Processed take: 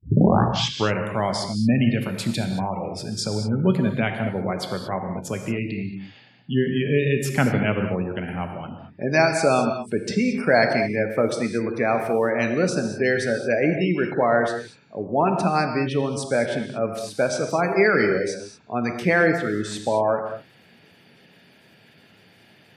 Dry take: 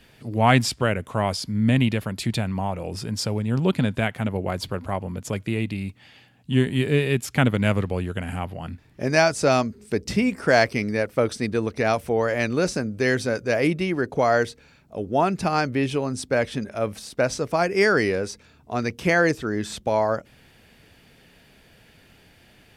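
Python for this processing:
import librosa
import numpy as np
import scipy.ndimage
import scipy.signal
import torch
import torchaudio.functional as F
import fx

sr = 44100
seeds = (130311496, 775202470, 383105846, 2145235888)

y = fx.tape_start_head(x, sr, length_s=0.94)
y = scipy.signal.sosfilt(scipy.signal.butter(4, 110.0, 'highpass', fs=sr, output='sos'), y)
y = fx.spec_gate(y, sr, threshold_db=-25, keep='strong')
y = fx.rev_gated(y, sr, seeds[0], gate_ms=250, shape='flat', drr_db=4.5)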